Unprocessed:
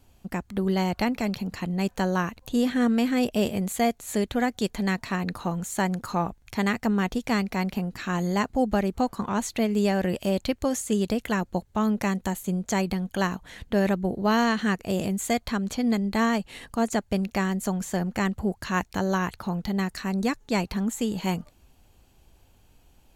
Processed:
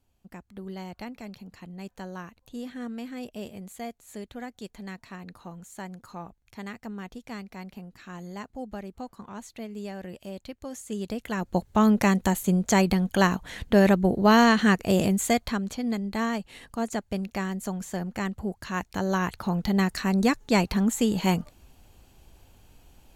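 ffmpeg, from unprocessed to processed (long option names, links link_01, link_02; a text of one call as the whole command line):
ffmpeg -i in.wav -af "volume=12.5dB,afade=type=in:start_time=10.62:duration=0.74:silence=0.354813,afade=type=in:start_time=11.36:duration=0.3:silence=0.354813,afade=type=out:start_time=15.03:duration=0.73:silence=0.354813,afade=type=in:start_time=18.77:duration=1.01:silence=0.398107" out.wav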